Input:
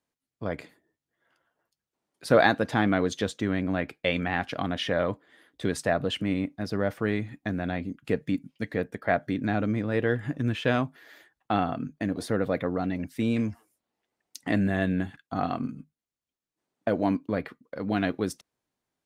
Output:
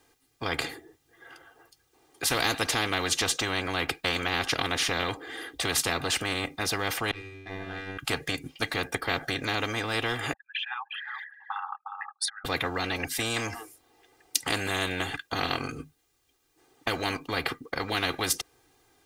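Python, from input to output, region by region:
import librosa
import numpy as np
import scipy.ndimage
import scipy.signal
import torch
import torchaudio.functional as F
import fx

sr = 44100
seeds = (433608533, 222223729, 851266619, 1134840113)

y = fx.chain(x, sr, fx.comb_fb(f0_hz=96.0, decay_s=1.6, harmonics='all', damping=0.0, mix_pct=100),
    fx.power_curve(exponent=1.4), at=(7.11, 7.98))
y = fx.chain(y, sr, fx.envelope_sharpen(power=3.0),
    fx.brickwall_highpass(low_hz=790.0),
    fx.echo_single(ms=359, db=-18.5), at=(10.33, 12.45))
y = y + 0.89 * np.pad(y, (int(2.5 * sr / 1000.0), 0))[:len(y)]
y = fx.spectral_comp(y, sr, ratio=4.0)
y = y * librosa.db_to_amplitude(2.0)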